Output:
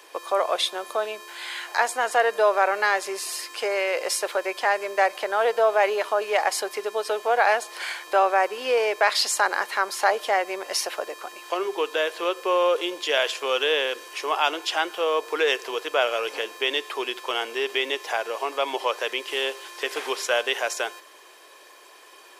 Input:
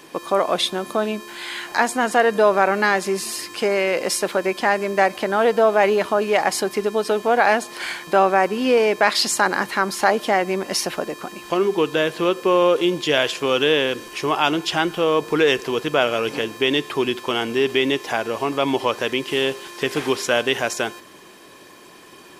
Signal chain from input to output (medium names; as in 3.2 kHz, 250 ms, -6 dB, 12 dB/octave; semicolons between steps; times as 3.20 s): high-pass 450 Hz 24 dB/octave; trim -3 dB